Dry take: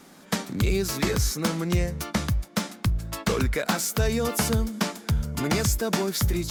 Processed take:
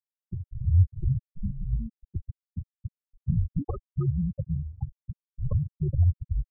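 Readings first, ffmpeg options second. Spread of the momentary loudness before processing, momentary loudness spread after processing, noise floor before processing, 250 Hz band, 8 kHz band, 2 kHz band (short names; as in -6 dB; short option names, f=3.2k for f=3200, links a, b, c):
4 LU, 16 LU, -50 dBFS, -8.5 dB, under -40 dB, under -40 dB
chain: -af "equalizer=f=390:t=o:w=0.32:g=12,highpass=f=180:t=q:w=0.5412,highpass=f=180:t=q:w=1.307,lowpass=f=3.3k:t=q:w=0.5176,lowpass=f=3.3k:t=q:w=0.7071,lowpass=f=3.3k:t=q:w=1.932,afreqshift=-300,afftfilt=real='re*gte(hypot(re,im),0.251)':imag='im*gte(hypot(re,im),0.251)':win_size=1024:overlap=0.75,volume=-2.5dB"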